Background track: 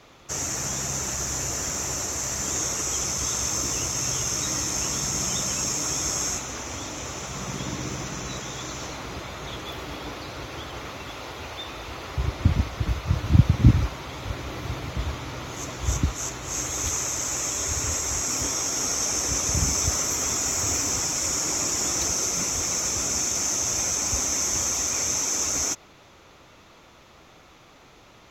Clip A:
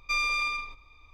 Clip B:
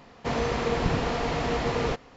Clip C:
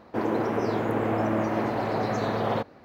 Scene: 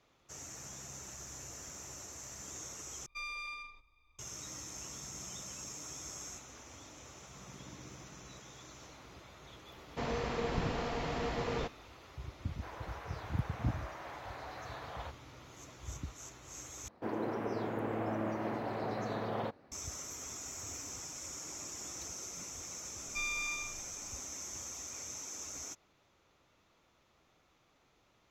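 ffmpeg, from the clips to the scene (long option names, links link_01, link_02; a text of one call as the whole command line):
ffmpeg -i bed.wav -i cue0.wav -i cue1.wav -i cue2.wav -filter_complex "[1:a]asplit=2[link_01][link_02];[3:a]asplit=2[link_03][link_04];[0:a]volume=-19dB[link_05];[link_03]highpass=900[link_06];[link_02]aecho=1:1:6.2:0.69[link_07];[link_05]asplit=3[link_08][link_09][link_10];[link_08]atrim=end=3.064[link_11];[link_01]atrim=end=1.13,asetpts=PTS-STARTPTS,volume=-14.5dB[link_12];[link_09]atrim=start=4.186:end=16.884[link_13];[link_04]atrim=end=2.84,asetpts=PTS-STARTPTS,volume=-10.5dB[link_14];[link_10]atrim=start=19.716[link_15];[2:a]atrim=end=2.16,asetpts=PTS-STARTPTS,volume=-9dB,afade=type=in:duration=0.004:curve=hsin,afade=type=out:start_time=2.156:duration=0.004:curve=hsin,adelay=9720[link_16];[link_06]atrim=end=2.84,asetpts=PTS-STARTPTS,volume=-13dB,afade=type=in:duration=0.004:curve=hsin,afade=type=out:start_time=2.836:duration=0.004:curve=hsin,adelay=12480[link_17];[link_07]atrim=end=1.13,asetpts=PTS-STARTPTS,volume=-11.5dB,afade=type=in:duration=0.004:curve=hsin,afade=type=out:start_time=1.126:duration=0.004:curve=hsin,adelay=23060[link_18];[link_11][link_12]acrossfade=duration=0.004:curve1=hsin:curve2=hsin[link_19];[link_19][link_13]acrossfade=duration=0.004:curve1=hsin:curve2=hsin[link_20];[link_20][link_14]acrossfade=duration=0.004:curve1=hsin:curve2=hsin[link_21];[link_21][link_15]acrossfade=duration=0.004:curve1=hsin:curve2=hsin[link_22];[link_22][link_16][link_17][link_18]amix=inputs=4:normalize=0" out.wav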